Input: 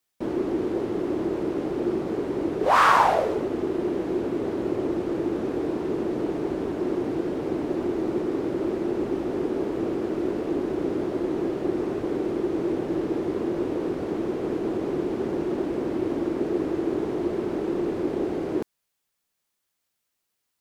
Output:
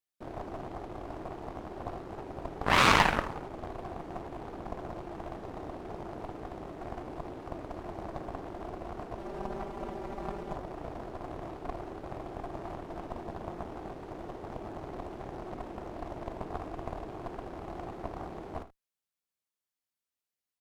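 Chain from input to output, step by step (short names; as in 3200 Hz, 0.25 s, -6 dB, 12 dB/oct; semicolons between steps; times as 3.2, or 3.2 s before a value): added harmonics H 4 -9 dB, 7 -14 dB, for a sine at -5 dBFS; 9.18–10.55 comb 5.1 ms, depth 89%; early reflections 54 ms -14 dB, 79 ms -16 dB; gain -6 dB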